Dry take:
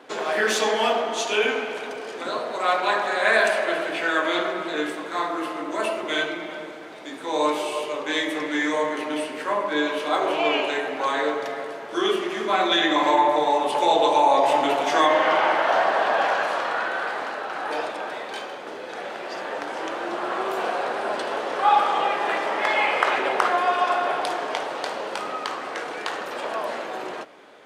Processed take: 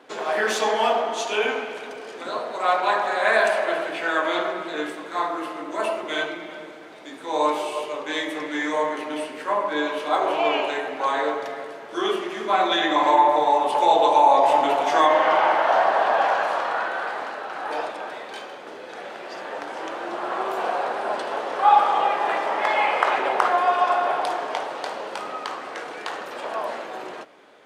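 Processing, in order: dynamic bell 840 Hz, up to +6 dB, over -31 dBFS, Q 1.1; trim -3 dB

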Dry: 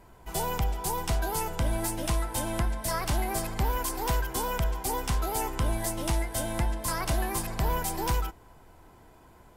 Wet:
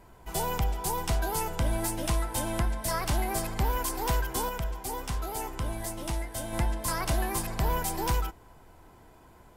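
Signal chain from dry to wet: 4.49–6.53 s: flange 1.3 Hz, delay 4 ms, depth 7.2 ms, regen -88%

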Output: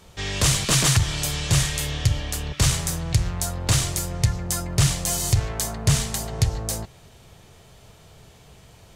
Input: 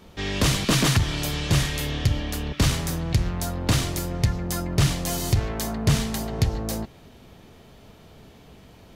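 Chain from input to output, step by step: graphic EQ 125/250/8000 Hz +4/-10/+9 dB

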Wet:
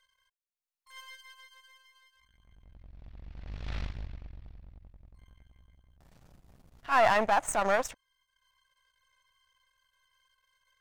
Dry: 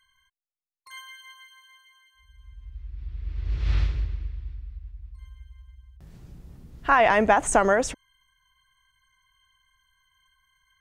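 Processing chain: partial rectifier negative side -12 dB; transient shaper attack -11 dB, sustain -7 dB; resonant low shelf 510 Hz -6.5 dB, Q 1.5

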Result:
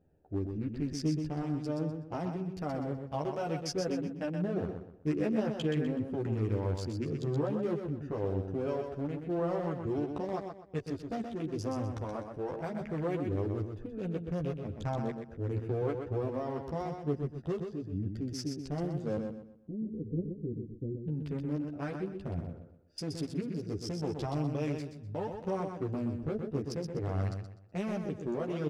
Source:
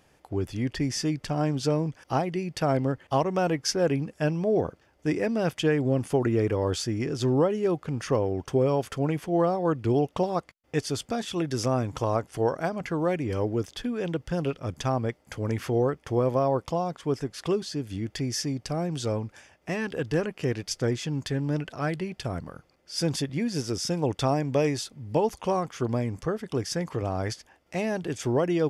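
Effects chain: local Wiener filter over 41 samples; 19.17–21.08 s: inverse Chebyshev low-pass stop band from 1.2 kHz, stop band 60 dB; peak limiter -22 dBFS, peak gain reduction 9.5 dB; chorus voices 2, 0.47 Hz, delay 12 ms, depth 2 ms; feedback delay 125 ms, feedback 33%, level -6 dB; tape noise reduction on one side only decoder only; trim -1.5 dB

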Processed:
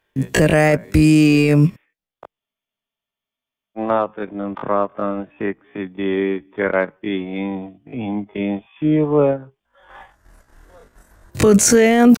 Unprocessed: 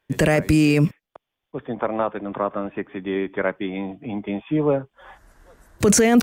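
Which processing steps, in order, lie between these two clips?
transient shaper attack 0 dB, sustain -8 dB; tempo 0.51×; spectral freeze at 2.41 s, 1.37 s; trim +4 dB

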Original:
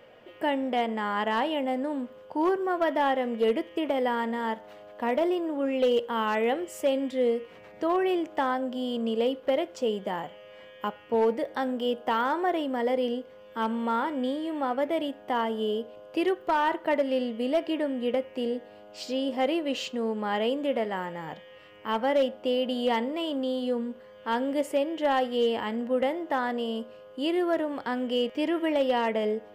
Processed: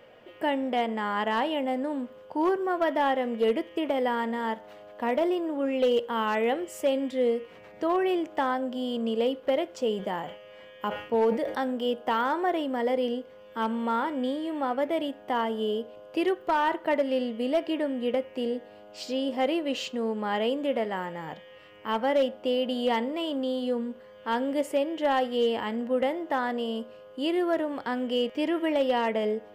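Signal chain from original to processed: 9.77–11.61 s: decay stretcher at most 94 dB/s

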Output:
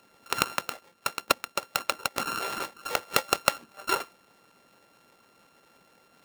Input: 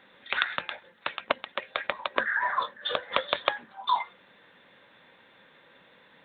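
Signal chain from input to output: sorted samples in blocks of 32 samples; harmonic-percussive split percussive +9 dB; 2.15–2.80 s: transient shaper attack -12 dB, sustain +2 dB; trim -6 dB

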